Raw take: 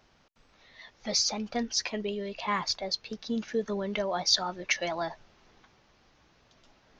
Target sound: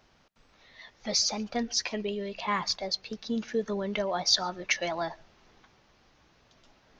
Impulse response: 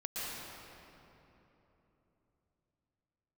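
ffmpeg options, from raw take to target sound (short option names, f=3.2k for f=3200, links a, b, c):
-filter_complex "[0:a]asplit=2[a][b];[1:a]atrim=start_sample=2205,atrim=end_sample=6615[c];[b][c]afir=irnorm=-1:irlink=0,volume=-21.5dB[d];[a][d]amix=inputs=2:normalize=0"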